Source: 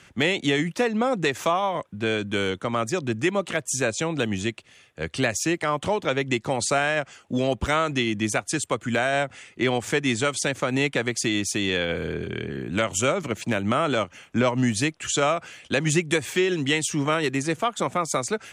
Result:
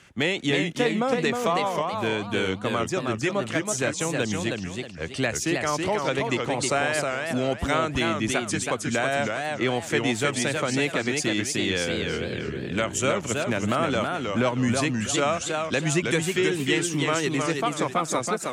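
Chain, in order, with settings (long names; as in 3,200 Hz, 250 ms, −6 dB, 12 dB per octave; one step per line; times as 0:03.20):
0:12.03–0:13.90: surface crackle 55 per second −53 dBFS
feedback echo with a swinging delay time 319 ms, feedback 33%, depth 166 cents, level −4 dB
level −2 dB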